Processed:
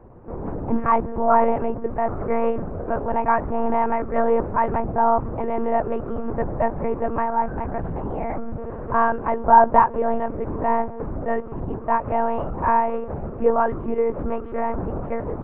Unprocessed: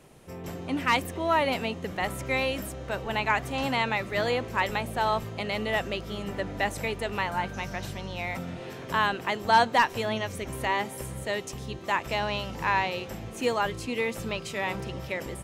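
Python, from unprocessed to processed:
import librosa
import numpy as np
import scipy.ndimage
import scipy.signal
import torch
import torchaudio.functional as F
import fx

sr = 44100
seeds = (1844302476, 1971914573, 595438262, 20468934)

y = scipy.signal.sosfilt(scipy.signal.butter(4, 1200.0, 'lowpass', fs=sr, output='sos'), x)
y = fx.lpc_monotone(y, sr, seeds[0], pitch_hz=230.0, order=8)
y = y * librosa.db_to_amplitude(9.0)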